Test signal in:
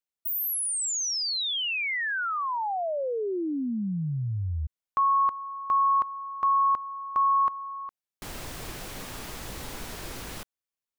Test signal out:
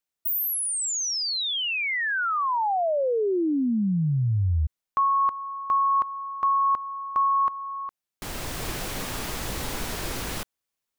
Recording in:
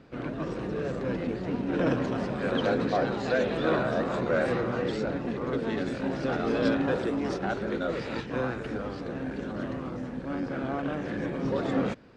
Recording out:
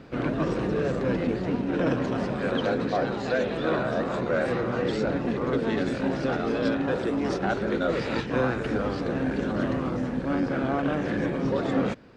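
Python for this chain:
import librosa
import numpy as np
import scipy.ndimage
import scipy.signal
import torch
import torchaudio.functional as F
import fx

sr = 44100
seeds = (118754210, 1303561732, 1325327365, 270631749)

y = fx.rider(x, sr, range_db=4, speed_s=0.5)
y = y * librosa.db_to_amplitude(3.0)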